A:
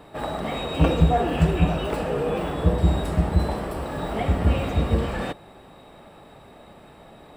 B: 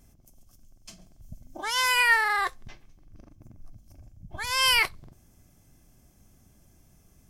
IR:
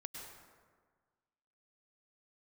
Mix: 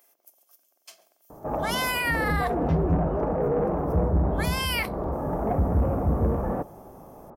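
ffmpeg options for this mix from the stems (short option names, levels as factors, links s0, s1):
-filter_complex "[0:a]lowpass=f=1100:w=0.5412,lowpass=f=1100:w=1.3066,asoftclip=type=tanh:threshold=0.126,adelay=1300,volume=1.26[s0];[1:a]highpass=f=470:w=0.5412,highpass=f=470:w=1.3066,equalizer=f=7100:t=o:w=1.4:g=-10,volume=1.26[s1];[s0][s1]amix=inputs=2:normalize=0,highshelf=f=6800:g=10.5,alimiter=limit=0.15:level=0:latency=1:release=199"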